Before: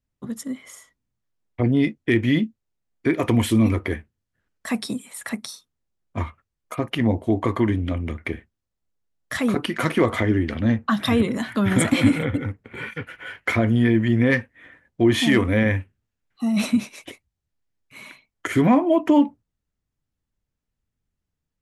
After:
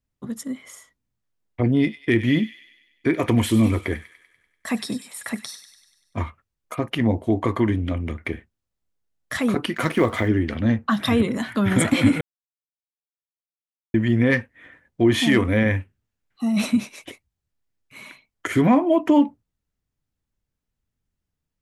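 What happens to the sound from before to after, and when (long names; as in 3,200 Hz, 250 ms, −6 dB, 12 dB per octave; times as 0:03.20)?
0:01.66–0:06.19: delay with a high-pass on its return 97 ms, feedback 58%, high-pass 1,900 Hz, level −11 dB
0:09.74–0:10.28: mu-law and A-law mismatch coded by A
0:12.21–0:13.94: silence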